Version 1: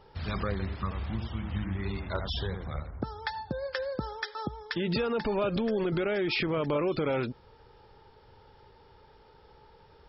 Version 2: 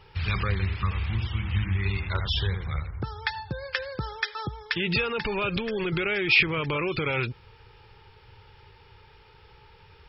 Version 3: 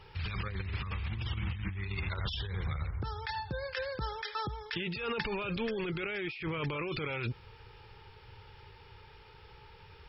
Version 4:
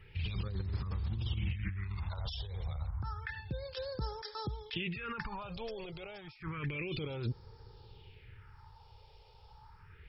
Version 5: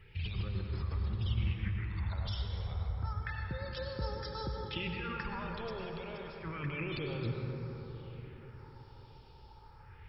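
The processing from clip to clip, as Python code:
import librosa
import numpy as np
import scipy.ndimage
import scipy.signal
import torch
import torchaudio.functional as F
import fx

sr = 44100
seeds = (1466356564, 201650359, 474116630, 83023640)

y1 = fx.graphic_eq_15(x, sr, hz=(100, 250, 630, 2500), db=(6, -10, -10, 10))
y1 = y1 * 10.0 ** (4.0 / 20.0)
y2 = fx.over_compress(y1, sr, threshold_db=-31.0, ratio=-1.0)
y2 = y2 * 10.0 ** (-4.5 / 20.0)
y3 = fx.phaser_stages(y2, sr, stages=4, low_hz=260.0, high_hz=2500.0, hz=0.3, feedback_pct=40)
y3 = y3 * 10.0 ** (-1.5 / 20.0)
y4 = fx.rev_plate(y3, sr, seeds[0], rt60_s=4.9, hf_ratio=0.3, predelay_ms=85, drr_db=1.5)
y4 = y4 * 10.0 ** (-1.0 / 20.0)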